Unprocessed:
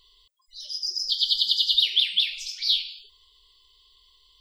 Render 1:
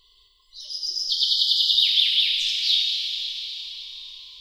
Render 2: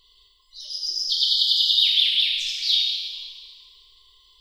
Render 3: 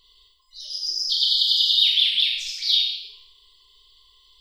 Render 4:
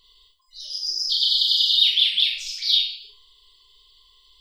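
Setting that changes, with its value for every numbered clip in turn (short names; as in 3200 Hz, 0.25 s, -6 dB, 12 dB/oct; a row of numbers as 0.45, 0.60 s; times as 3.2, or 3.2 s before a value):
Schroeder reverb, RT60: 4.5, 1.8, 0.74, 0.33 s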